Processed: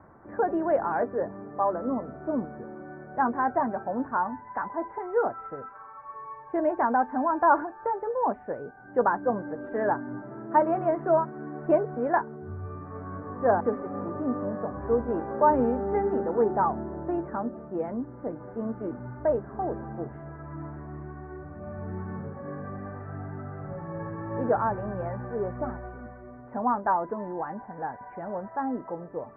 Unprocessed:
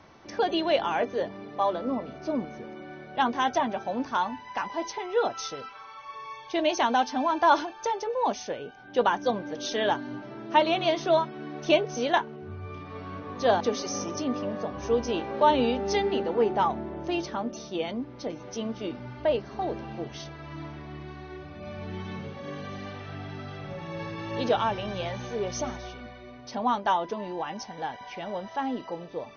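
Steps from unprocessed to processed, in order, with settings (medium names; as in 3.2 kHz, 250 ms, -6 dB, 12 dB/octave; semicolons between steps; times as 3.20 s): steep low-pass 1.7 kHz 48 dB/octave; peaking EQ 86 Hz +2.5 dB 2.2 oct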